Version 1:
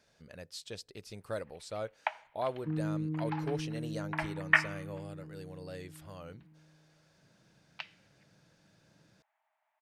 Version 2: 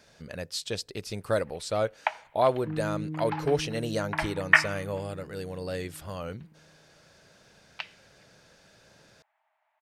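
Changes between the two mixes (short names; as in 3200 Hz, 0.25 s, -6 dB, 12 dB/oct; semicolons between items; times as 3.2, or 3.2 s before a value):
speech +11.0 dB; first sound +5.5 dB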